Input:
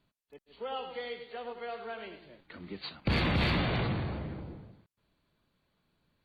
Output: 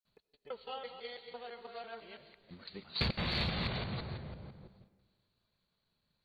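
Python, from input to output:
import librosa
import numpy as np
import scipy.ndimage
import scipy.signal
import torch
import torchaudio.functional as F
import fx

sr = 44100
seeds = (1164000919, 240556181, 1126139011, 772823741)

y = fx.local_reverse(x, sr, ms=167.0)
y = fx.peak_eq(y, sr, hz=300.0, db=-9.5, octaves=0.27)
y = fx.rev_freeverb(y, sr, rt60_s=1.5, hf_ratio=0.7, predelay_ms=45, drr_db=14.0)
y = fx.transient(y, sr, attack_db=6, sustain_db=2)
y = fx.peak_eq(y, sr, hz=4200.0, db=10.5, octaves=0.45)
y = y * librosa.db_to_amplitude(-8.0)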